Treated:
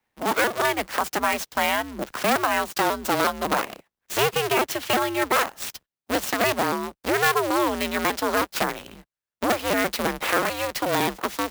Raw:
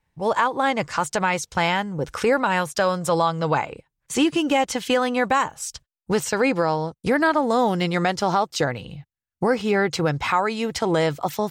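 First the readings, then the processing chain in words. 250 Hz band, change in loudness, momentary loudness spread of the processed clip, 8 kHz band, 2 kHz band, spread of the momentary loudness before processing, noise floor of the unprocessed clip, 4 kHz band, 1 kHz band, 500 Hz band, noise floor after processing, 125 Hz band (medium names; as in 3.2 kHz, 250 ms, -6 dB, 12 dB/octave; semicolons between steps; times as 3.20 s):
-5.0 dB, -1.5 dB, 6 LU, +1.5 dB, +0.5 dB, 6 LU, under -85 dBFS, +1.5 dB, -1.5 dB, -3.0 dB, under -85 dBFS, -9.0 dB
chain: cycle switcher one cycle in 2, inverted; high-pass 200 Hz 6 dB/octave; bass shelf 380 Hz -5.5 dB; frequency shift -26 Hz; sampling jitter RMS 0.027 ms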